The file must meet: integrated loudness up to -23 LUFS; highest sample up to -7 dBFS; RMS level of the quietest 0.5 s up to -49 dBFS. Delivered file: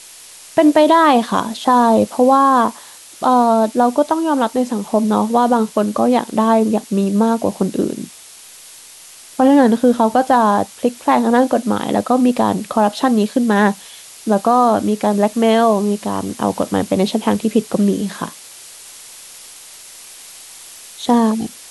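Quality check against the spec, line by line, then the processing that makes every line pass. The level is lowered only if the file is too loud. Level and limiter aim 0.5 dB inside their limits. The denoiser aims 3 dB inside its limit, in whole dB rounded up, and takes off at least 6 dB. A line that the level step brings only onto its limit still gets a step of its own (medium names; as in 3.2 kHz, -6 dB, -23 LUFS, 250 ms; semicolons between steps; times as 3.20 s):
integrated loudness -15.5 LUFS: fail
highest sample -2.5 dBFS: fail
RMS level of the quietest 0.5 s -40 dBFS: fail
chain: noise reduction 6 dB, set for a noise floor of -40 dBFS; trim -8 dB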